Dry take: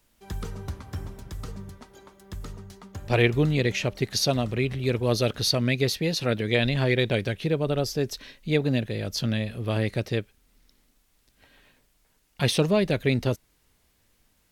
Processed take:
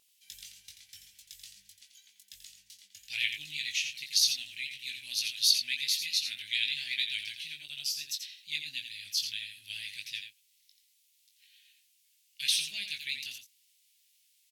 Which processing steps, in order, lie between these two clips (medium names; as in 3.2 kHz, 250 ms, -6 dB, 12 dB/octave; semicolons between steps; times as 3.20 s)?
inverse Chebyshev high-pass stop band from 1.3 kHz, stop band 40 dB; vibrato 11 Hz 44 cents; doubling 20 ms -5 dB; on a send: delay 86 ms -8 dB